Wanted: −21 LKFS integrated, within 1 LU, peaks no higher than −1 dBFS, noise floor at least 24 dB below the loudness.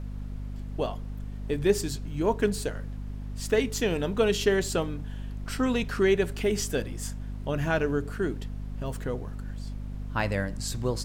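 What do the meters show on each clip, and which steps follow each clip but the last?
mains hum 50 Hz; hum harmonics up to 250 Hz; level of the hum −33 dBFS; background noise floor −37 dBFS; target noise floor −54 dBFS; integrated loudness −29.5 LKFS; sample peak −10.0 dBFS; target loudness −21.0 LKFS
→ mains-hum notches 50/100/150/200/250 Hz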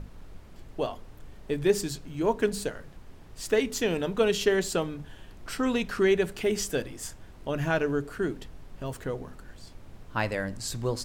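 mains hum none found; background noise floor −48 dBFS; target noise floor −53 dBFS
→ noise reduction from a noise print 6 dB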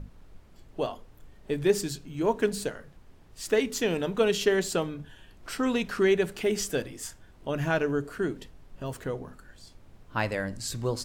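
background noise floor −54 dBFS; integrated loudness −29.0 LKFS; sample peak −10.5 dBFS; target loudness −21.0 LKFS
→ level +8 dB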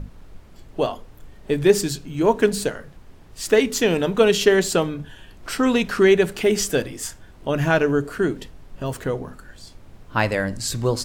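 integrated loudness −21.0 LKFS; sample peak −2.5 dBFS; background noise floor −46 dBFS

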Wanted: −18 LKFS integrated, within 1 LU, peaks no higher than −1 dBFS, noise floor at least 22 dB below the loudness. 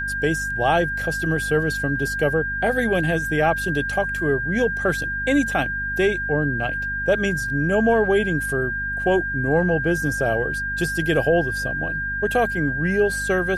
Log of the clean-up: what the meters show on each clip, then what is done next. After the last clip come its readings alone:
mains hum 50 Hz; hum harmonics up to 250 Hz; level of the hum −32 dBFS; interfering tone 1,600 Hz; level of the tone −24 dBFS; integrated loudness −21.5 LKFS; sample peak −7.0 dBFS; target loudness −18.0 LKFS
→ mains-hum notches 50/100/150/200/250 Hz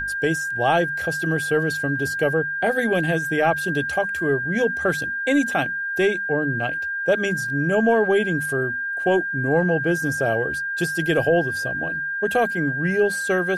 mains hum none found; interfering tone 1,600 Hz; level of the tone −24 dBFS
→ notch filter 1,600 Hz, Q 30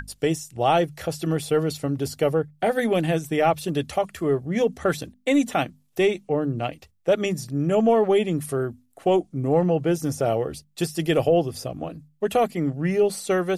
interfering tone none found; integrated loudness −24.0 LKFS; sample peak −7.5 dBFS; target loudness −18.0 LKFS
→ level +6 dB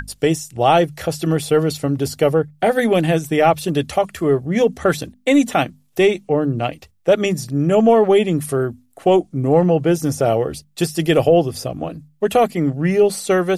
integrated loudness −18.0 LKFS; sample peak −1.5 dBFS; background noise floor −56 dBFS

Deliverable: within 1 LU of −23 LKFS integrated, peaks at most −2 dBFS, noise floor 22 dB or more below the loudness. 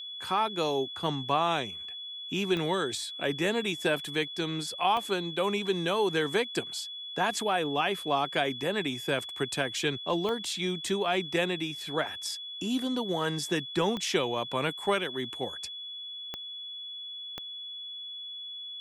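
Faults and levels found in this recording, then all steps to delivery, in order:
number of clicks 6; interfering tone 3,400 Hz; level of the tone −38 dBFS; integrated loudness −30.5 LKFS; sample peak −13.5 dBFS; target loudness −23.0 LKFS
→ click removal
notch filter 3,400 Hz, Q 30
level +7.5 dB

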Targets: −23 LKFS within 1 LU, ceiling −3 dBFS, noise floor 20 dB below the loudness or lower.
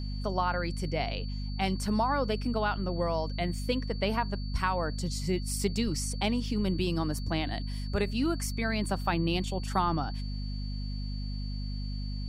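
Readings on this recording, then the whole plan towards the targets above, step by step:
mains hum 50 Hz; hum harmonics up to 250 Hz; level of the hum −32 dBFS; interfering tone 4,500 Hz; level of the tone −47 dBFS; integrated loudness −31.5 LKFS; sample peak −13.5 dBFS; target loudness −23.0 LKFS
→ mains-hum notches 50/100/150/200/250 Hz
notch filter 4,500 Hz, Q 30
level +8.5 dB

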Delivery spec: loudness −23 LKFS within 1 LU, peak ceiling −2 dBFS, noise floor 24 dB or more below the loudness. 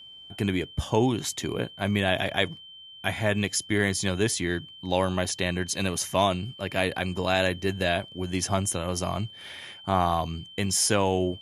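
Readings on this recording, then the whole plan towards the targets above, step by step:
interfering tone 3,100 Hz; level of the tone −44 dBFS; integrated loudness −27.0 LKFS; sample peak −8.0 dBFS; target loudness −23.0 LKFS
→ notch filter 3,100 Hz, Q 30
level +4 dB

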